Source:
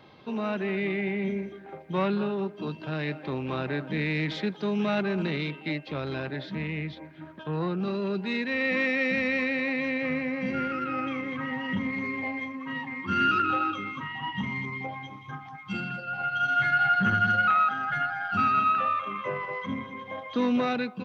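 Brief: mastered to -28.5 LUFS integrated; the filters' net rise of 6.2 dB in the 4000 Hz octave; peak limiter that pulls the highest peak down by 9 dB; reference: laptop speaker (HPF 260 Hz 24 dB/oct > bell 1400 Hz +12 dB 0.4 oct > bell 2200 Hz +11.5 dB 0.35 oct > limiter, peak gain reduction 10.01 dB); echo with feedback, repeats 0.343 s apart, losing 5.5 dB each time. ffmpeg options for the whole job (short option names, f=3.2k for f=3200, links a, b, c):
-af "equalizer=f=4k:t=o:g=6,alimiter=limit=-22.5dB:level=0:latency=1,highpass=f=260:w=0.5412,highpass=f=260:w=1.3066,equalizer=f=1.4k:t=o:w=0.4:g=12,equalizer=f=2.2k:t=o:w=0.35:g=11.5,aecho=1:1:343|686|1029|1372|1715|2058|2401:0.531|0.281|0.149|0.079|0.0419|0.0222|0.0118,volume=-3dB,alimiter=limit=-21dB:level=0:latency=1"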